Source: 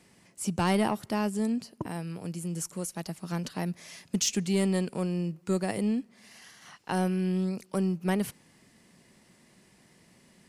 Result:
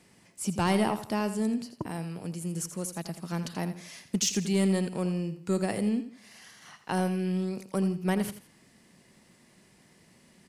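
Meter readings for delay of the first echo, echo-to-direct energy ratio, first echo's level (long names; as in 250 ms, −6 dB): 83 ms, −11.0 dB, −11.5 dB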